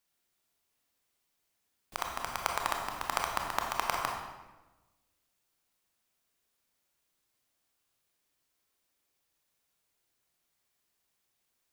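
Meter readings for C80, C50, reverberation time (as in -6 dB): 5.0 dB, 3.5 dB, 1.1 s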